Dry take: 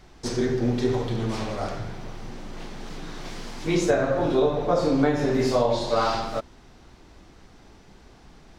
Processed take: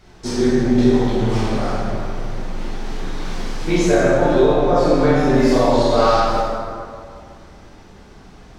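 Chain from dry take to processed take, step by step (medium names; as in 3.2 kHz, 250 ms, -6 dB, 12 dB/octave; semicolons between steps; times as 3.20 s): plate-style reverb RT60 2.2 s, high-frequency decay 0.55×, DRR -6.5 dB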